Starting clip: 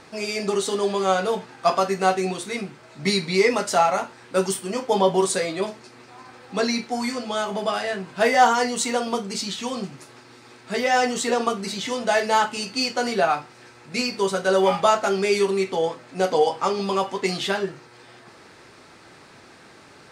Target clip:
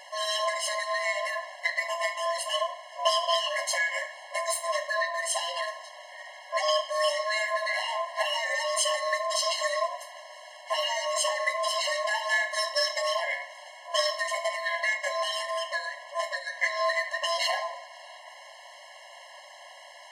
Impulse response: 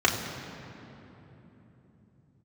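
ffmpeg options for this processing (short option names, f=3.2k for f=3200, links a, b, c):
-filter_complex "[0:a]aeval=exprs='val(0)*sin(2*PI*850*n/s)':c=same,acompressor=threshold=-24dB:ratio=10,asplit=2[a][b];[1:a]atrim=start_sample=2205,adelay=75[c];[b][c]afir=irnorm=-1:irlink=0,volume=-28dB[d];[a][d]amix=inputs=2:normalize=0,afftfilt=real='re*eq(mod(floor(b*sr/1024/550),2),1)':imag='im*eq(mod(floor(b*sr/1024/550),2),1)':win_size=1024:overlap=0.75,volume=7dB"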